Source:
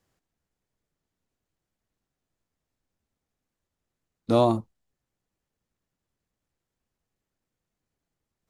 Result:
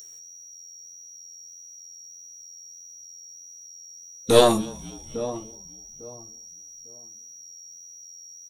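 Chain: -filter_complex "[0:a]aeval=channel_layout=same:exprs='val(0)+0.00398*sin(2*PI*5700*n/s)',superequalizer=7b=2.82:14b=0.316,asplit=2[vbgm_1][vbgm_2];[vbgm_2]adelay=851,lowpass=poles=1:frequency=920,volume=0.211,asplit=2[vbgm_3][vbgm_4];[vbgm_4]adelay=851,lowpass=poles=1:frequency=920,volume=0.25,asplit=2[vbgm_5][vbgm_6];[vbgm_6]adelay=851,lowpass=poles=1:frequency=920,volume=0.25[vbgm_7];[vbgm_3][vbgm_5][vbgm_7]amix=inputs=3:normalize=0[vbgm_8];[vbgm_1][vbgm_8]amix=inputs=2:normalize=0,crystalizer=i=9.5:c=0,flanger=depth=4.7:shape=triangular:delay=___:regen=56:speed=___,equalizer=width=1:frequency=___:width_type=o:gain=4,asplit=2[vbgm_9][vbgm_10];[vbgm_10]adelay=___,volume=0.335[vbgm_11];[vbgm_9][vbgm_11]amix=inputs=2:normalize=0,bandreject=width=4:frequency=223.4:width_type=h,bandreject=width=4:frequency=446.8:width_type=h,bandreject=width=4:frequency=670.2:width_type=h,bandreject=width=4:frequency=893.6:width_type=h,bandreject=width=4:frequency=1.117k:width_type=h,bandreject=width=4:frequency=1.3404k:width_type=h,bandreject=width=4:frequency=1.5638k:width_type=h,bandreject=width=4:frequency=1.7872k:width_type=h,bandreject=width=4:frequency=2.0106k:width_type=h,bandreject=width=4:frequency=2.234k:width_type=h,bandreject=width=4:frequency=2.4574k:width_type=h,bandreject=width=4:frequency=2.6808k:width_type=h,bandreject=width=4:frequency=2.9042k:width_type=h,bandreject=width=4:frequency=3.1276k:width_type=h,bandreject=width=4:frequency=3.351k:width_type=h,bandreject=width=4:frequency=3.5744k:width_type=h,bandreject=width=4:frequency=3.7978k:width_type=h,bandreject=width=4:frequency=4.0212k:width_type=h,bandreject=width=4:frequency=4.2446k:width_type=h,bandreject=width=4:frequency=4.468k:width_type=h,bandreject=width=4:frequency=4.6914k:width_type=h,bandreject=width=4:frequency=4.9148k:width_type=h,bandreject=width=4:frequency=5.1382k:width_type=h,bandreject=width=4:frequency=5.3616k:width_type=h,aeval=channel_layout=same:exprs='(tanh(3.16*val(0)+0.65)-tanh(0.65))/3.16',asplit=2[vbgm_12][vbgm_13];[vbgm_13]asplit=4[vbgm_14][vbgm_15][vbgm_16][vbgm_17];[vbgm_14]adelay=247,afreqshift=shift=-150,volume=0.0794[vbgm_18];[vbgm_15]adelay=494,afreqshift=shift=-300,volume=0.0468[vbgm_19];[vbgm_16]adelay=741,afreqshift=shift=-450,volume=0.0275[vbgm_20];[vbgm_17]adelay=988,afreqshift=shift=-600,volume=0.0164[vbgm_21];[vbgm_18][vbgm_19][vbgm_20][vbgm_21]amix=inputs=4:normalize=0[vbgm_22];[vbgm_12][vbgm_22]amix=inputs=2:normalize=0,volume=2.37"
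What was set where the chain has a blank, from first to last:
0.5, 1.6, 210, 15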